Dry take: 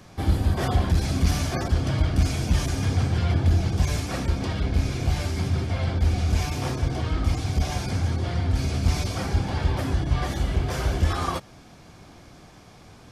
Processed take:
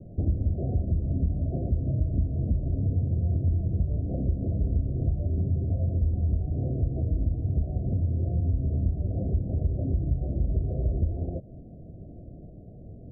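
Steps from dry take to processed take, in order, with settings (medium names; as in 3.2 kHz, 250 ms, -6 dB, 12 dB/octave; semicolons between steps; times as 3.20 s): compression, threshold -29 dBFS, peak gain reduction 13.5 dB; steep low-pass 680 Hz 96 dB/octave; bass shelf 220 Hz +8 dB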